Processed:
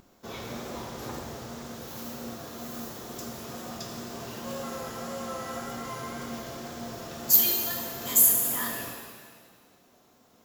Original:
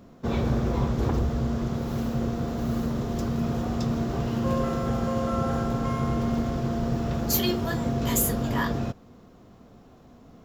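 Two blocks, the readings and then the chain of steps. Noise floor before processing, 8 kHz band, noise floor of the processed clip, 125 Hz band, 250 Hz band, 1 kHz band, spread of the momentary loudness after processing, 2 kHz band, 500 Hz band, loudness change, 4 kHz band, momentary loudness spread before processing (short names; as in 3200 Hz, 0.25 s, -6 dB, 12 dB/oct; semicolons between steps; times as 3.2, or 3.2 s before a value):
-52 dBFS, +6.5 dB, -61 dBFS, -18.0 dB, -13.0 dB, -6.0 dB, 20 LU, -3.0 dB, -8.5 dB, -0.5 dB, +0.5 dB, 5 LU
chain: RIAA curve recording; wow and flutter 47 cents; shimmer reverb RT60 1.6 s, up +7 st, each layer -8 dB, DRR 1 dB; gain -8.5 dB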